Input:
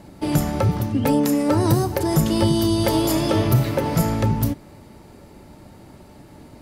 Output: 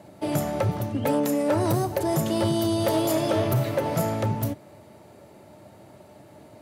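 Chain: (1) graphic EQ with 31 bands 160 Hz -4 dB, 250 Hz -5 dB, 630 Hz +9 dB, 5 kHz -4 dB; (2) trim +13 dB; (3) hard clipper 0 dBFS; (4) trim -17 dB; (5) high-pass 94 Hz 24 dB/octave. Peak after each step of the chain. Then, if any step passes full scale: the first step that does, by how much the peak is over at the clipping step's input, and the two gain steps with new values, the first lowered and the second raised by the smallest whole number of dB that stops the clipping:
-5.0 dBFS, +8.0 dBFS, 0.0 dBFS, -17.0 dBFS, -12.0 dBFS; step 2, 8.0 dB; step 2 +5 dB, step 4 -9 dB

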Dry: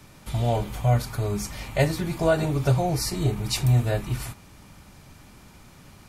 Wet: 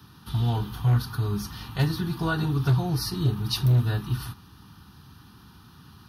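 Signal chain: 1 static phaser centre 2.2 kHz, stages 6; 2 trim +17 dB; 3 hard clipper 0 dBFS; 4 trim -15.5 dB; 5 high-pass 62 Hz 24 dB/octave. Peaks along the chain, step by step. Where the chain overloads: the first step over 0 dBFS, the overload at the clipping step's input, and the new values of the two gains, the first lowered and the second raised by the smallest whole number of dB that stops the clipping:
-12.0 dBFS, +5.0 dBFS, 0.0 dBFS, -15.5 dBFS, -12.0 dBFS; step 2, 5.0 dB; step 2 +12 dB, step 4 -10.5 dB

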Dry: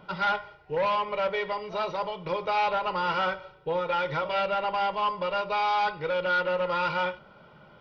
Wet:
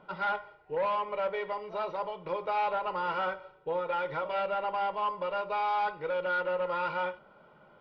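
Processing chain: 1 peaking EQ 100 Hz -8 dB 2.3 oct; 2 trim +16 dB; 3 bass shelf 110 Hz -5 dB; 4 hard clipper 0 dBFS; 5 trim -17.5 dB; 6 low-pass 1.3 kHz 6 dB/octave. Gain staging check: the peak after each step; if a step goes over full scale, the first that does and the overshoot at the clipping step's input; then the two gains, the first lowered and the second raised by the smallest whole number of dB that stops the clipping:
-18.5 dBFS, -2.5 dBFS, -2.0 dBFS, -2.0 dBFS, -19.5 dBFS, -22.0 dBFS; nothing clips

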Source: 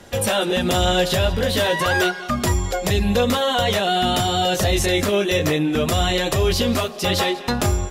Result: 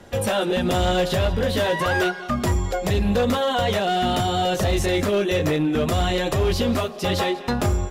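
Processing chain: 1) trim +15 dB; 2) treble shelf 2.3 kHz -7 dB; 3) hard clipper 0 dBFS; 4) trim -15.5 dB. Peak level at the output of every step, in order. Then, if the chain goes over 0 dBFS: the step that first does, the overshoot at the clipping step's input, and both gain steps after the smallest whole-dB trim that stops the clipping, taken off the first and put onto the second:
+5.5 dBFS, +5.0 dBFS, 0.0 dBFS, -15.5 dBFS; step 1, 5.0 dB; step 1 +10 dB, step 4 -10.5 dB

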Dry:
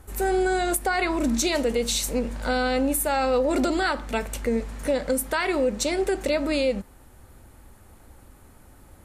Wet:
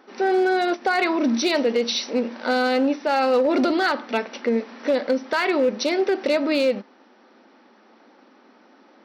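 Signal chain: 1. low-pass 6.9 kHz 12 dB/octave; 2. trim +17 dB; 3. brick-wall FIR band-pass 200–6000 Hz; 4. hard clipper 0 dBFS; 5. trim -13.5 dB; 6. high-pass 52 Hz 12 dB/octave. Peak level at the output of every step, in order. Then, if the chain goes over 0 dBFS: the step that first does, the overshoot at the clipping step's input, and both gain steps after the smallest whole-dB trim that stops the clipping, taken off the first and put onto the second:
-12.0 dBFS, +5.0 dBFS, +4.5 dBFS, 0.0 dBFS, -13.5 dBFS, -12.0 dBFS; step 2, 4.5 dB; step 2 +12 dB, step 5 -8.5 dB

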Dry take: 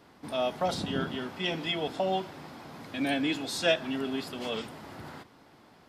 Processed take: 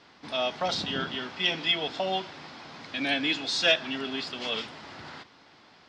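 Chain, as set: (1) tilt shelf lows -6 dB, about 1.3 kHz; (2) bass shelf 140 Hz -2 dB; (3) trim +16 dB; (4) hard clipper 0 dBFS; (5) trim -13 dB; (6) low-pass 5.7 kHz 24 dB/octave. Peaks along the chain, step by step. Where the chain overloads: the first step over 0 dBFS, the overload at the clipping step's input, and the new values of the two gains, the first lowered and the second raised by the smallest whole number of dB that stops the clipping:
-12.0 dBFS, -12.0 dBFS, +4.0 dBFS, 0.0 dBFS, -13.0 dBFS, -12.0 dBFS; step 3, 4.0 dB; step 3 +12 dB, step 5 -9 dB

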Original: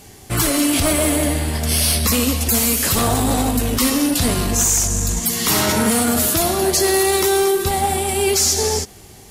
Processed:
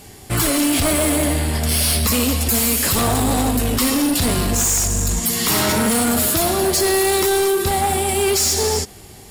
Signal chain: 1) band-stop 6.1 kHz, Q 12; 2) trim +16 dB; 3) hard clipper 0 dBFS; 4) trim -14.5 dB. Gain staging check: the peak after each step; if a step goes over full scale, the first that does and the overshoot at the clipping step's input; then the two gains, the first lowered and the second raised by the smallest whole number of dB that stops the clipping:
-8.0 dBFS, +8.0 dBFS, 0.0 dBFS, -14.5 dBFS; step 2, 8.0 dB; step 2 +8 dB, step 4 -6.5 dB

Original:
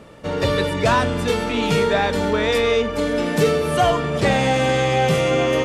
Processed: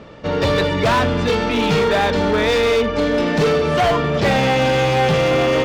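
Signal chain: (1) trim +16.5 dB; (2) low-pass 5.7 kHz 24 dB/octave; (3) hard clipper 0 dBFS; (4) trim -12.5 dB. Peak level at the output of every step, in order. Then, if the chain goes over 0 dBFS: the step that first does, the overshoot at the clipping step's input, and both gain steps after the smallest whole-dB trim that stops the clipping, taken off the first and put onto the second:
+9.5 dBFS, +9.5 dBFS, 0.0 dBFS, -12.5 dBFS; step 1, 9.5 dB; step 1 +6.5 dB, step 4 -2.5 dB

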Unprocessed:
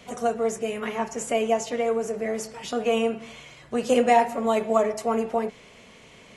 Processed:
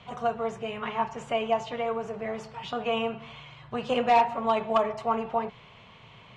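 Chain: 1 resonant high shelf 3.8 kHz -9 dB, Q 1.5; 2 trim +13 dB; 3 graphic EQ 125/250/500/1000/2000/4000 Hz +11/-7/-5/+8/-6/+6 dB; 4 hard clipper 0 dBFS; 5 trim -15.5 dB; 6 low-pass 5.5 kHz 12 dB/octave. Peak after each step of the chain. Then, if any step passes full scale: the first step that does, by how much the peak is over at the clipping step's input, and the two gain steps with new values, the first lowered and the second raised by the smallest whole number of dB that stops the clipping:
-7.0 dBFS, +6.0 dBFS, +7.5 dBFS, 0.0 dBFS, -15.5 dBFS, -15.0 dBFS; step 2, 7.5 dB; step 2 +5 dB, step 5 -7.5 dB

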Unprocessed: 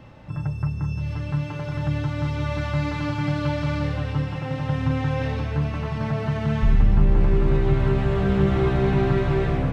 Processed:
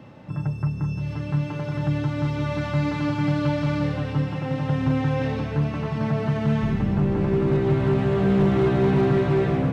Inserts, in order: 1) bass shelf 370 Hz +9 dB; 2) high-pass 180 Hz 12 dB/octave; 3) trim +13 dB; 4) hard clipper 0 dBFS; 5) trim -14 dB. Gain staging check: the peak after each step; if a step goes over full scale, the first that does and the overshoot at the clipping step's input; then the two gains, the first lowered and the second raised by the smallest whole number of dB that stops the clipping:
+3.0 dBFS, -6.0 dBFS, +7.0 dBFS, 0.0 dBFS, -14.0 dBFS; step 1, 7.0 dB; step 3 +6 dB, step 5 -7 dB

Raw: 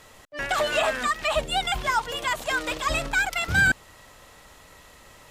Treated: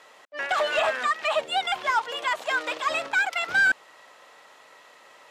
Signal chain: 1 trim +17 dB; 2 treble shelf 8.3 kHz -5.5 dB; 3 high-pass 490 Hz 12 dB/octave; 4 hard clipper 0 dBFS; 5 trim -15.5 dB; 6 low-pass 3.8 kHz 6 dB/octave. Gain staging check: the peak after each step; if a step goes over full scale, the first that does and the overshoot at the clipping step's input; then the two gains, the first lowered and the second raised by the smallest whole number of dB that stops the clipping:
+6.5 dBFS, +6.0 dBFS, +5.0 dBFS, 0.0 dBFS, -15.5 dBFS, -15.5 dBFS; step 1, 5.0 dB; step 1 +12 dB, step 5 -10.5 dB

